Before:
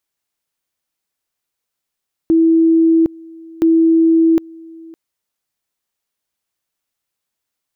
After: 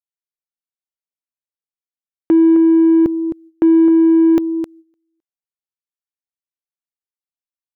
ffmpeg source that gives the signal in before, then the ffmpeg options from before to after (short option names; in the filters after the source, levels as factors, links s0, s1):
-f lavfi -i "aevalsrc='pow(10,(-8-25*gte(mod(t,1.32),0.76))/20)*sin(2*PI*327*t)':d=2.64:s=44100"
-filter_complex "[0:a]agate=range=0.0447:threshold=0.0282:ratio=16:detection=peak,aecho=1:1:262:0.282,asplit=2[s0][s1];[s1]asoftclip=type=tanh:threshold=0.112,volume=0.501[s2];[s0][s2]amix=inputs=2:normalize=0"